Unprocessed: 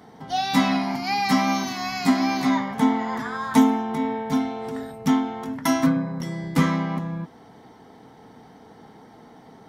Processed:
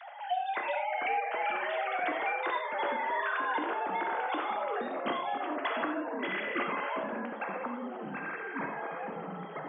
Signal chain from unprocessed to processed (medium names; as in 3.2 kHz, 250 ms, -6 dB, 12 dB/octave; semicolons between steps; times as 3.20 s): formants replaced by sine waves; high-pass 810 Hz 6 dB/octave; peaking EQ 1.5 kHz +4.5 dB 0.28 oct; compression, threshold -31 dBFS, peak gain reduction 19 dB; reverberation, pre-delay 8 ms, DRR 3.5 dB; ever faster or slower copies 296 ms, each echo -4 st, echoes 3, each echo -6 dB; three bands compressed up and down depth 40%